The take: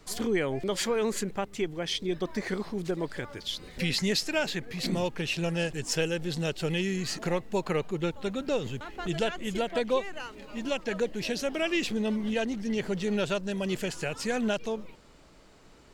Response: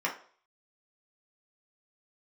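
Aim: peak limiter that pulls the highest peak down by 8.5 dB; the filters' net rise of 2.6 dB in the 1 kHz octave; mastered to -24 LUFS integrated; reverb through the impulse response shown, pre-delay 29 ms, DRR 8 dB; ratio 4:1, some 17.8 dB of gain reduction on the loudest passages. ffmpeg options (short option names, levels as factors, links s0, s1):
-filter_complex "[0:a]equalizer=f=1000:t=o:g=3.5,acompressor=threshold=0.00562:ratio=4,alimiter=level_in=5.96:limit=0.0631:level=0:latency=1,volume=0.168,asplit=2[s0][s1];[1:a]atrim=start_sample=2205,adelay=29[s2];[s1][s2]afir=irnorm=-1:irlink=0,volume=0.15[s3];[s0][s3]amix=inputs=2:normalize=0,volume=16.8"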